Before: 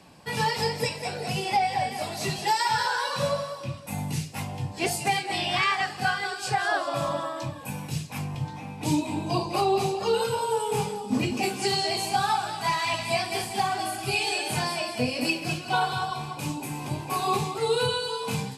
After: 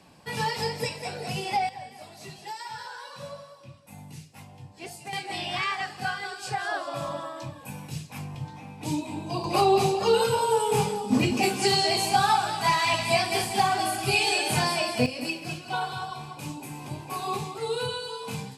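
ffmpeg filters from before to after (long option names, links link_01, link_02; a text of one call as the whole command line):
ffmpeg -i in.wav -af "asetnsamples=nb_out_samples=441:pad=0,asendcmd='1.69 volume volume -13.5dB;5.13 volume volume -4.5dB;9.44 volume volume 3dB;15.06 volume volume -5dB',volume=-2.5dB" out.wav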